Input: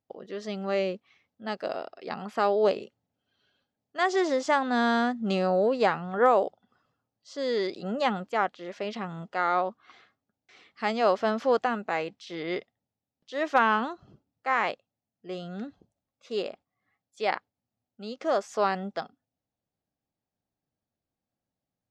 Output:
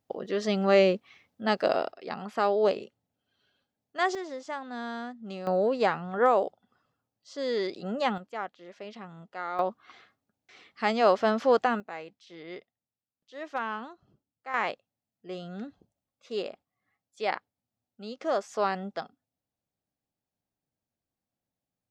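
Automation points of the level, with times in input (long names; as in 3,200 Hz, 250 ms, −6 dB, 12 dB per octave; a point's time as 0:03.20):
+7 dB
from 0:01.92 −1 dB
from 0:04.15 −12 dB
from 0:05.47 −1.5 dB
from 0:08.18 −9 dB
from 0:09.59 +1.5 dB
from 0:11.80 −10.5 dB
from 0:14.54 −2 dB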